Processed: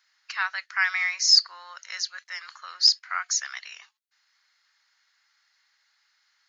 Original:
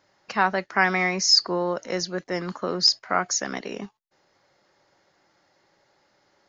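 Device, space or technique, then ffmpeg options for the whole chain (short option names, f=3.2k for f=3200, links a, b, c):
headphones lying on a table: -af "highpass=f=1.4k:w=0.5412,highpass=f=1.4k:w=1.3066,equalizer=f=4.2k:t=o:w=0.22:g=4"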